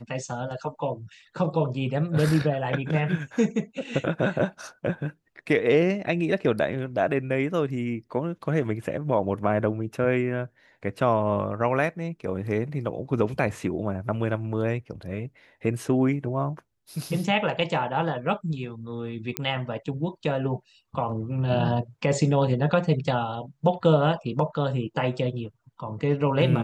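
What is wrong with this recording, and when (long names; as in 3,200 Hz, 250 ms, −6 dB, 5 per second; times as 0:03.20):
0:19.37: click −9 dBFS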